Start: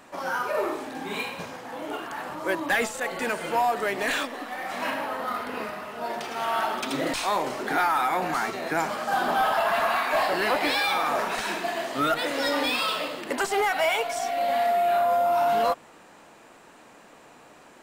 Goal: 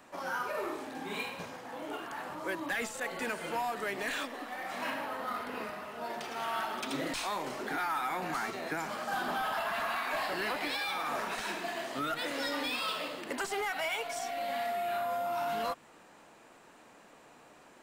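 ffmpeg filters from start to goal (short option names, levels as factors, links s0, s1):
-filter_complex "[0:a]acrossover=split=400|940|5800[s0][s1][s2][s3];[s1]acompressor=threshold=0.0178:ratio=6[s4];[s0][s4][s2][s3]amix=inputs=4:normalize=0,alimiter=limit=0.119:level=0:latency=1:release=129,volume=0.501"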